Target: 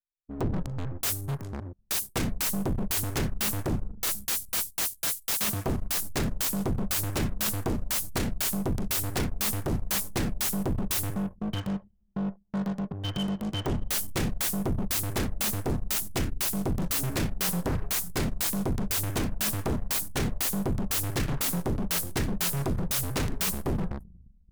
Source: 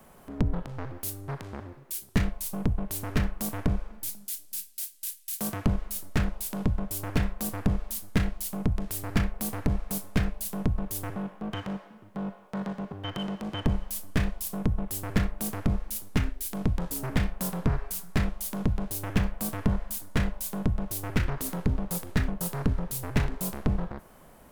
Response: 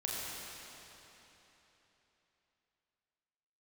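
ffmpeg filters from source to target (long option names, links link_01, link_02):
-filter_complex "[0:a]bass=frequency=250:gain=6,treble=frequency=4000:gain=14,agate=range=-47dB:threshold=-37dB:ratio=16:detection=peak,asplit=2[link_01][link_02];[1:a]atrim=start_sample=2205[link_03];[link_02][link_03]afir=irnorm=-1:irlink=0,volume=-24dB[link_04];[link_01][link_04]amix=inputs=2:normalize=0,anlmdn=0.251,aeval=exprs='0.0944*(abs(mod(val(0)/0.0944+3,4)-2)-1)':channel_layout=same,volume=-1dB"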